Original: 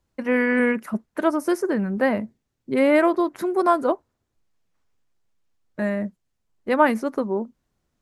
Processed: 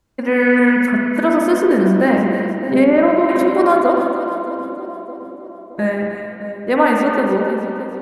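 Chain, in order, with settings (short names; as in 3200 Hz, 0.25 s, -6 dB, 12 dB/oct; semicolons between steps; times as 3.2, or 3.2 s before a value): in parallel at 0 dB: limiter -14.5 dBFS, peak gain reduction 10 dB; on the sum: split-band echo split 830 Hz, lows 0.618 s, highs 0.31 s, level -11 dB; spring tank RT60 2.2 s, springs 42/57 ms, chirp 55 ms, DRR -0.5 dB; added harmonics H 2 -28 dB, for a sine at 1.5 dBFS; 2.84–3.29 tape spacing loss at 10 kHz 27 dB; gain -1 dB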